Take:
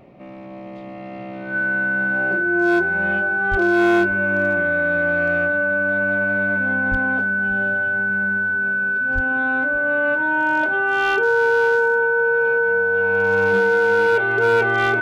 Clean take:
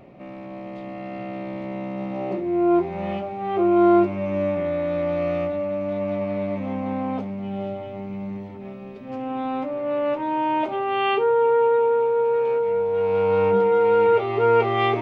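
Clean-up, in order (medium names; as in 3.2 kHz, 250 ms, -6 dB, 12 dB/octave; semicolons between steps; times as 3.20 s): clip repair -11 dBFS; band-stop 1.5 kHz, Q 30; de-plosive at 3.50/6.90/9.14 s; inverse comb 575 ms -20.5 dB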